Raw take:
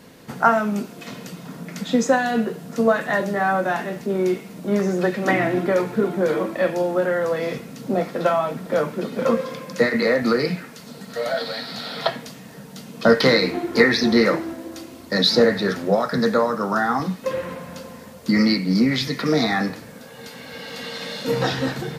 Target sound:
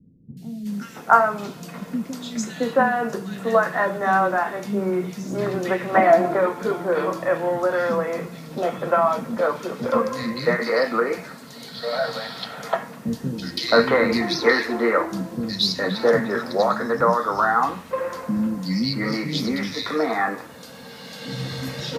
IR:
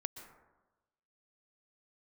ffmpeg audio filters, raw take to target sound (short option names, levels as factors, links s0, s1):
-filter_complex "[0:a]asettb=1/sr,asplit=3[s0][s1][s2];[s0]atrim=end=5.294[s3];[s1]atrim=start=5.29:end=5.69,asetpts=PTS-STARTPTS,afade=t=in:d=0.004:c=qsin,afade=t=out:st=0.396:d=0.004:c=qsin,equalizer=f=650:w=3.9:g=13.5[s4];[s2]atrim=start=5.686[s5];[s3][s4]acrossfade=d=0.004:c1=hsin:c2=qsin[s6];[s6][s5]acrossfade=d=0.004:c1=qsin:c2=hsin,acrossover=split=260|2600[s7][s8][s9];[s9]adelay=370[s10];[s8]adelay=670[s11];[s7][s11][s10]amix=inputs=3:normalize=0,adynamicequalizer=threshold=0.0178:dfrequency=1100:dqfactor=1.4:tfrequency=1100:tqfactor=1.4:attack=5:release=100:ratio=0.375:range=3.5:mode=boostabove:tftype=bell,volume=0.841"